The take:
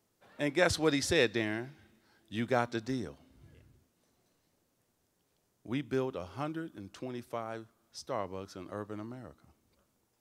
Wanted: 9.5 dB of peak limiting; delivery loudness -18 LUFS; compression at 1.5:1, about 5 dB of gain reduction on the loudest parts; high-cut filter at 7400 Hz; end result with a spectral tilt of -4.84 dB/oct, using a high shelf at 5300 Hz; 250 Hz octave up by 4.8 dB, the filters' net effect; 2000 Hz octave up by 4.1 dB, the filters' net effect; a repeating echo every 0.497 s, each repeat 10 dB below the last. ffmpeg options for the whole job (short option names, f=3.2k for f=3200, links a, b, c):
-af "lowpass=7.4k,equalizer=f=250:t=o:g=6,equalizer=f=2k:t=o:g=4.5,highshelf=f=5.3k:g=3.5,acompressor=threshold=-33dB:ratio=1.5,alimiter=level_in=0.5dB:limit=-24dB:level=0:latency=1,volume=-0.5dB,aecho=1:1:497|994|1491|1988:0.316|0.101|0.0324|0.0104,volume=20dB"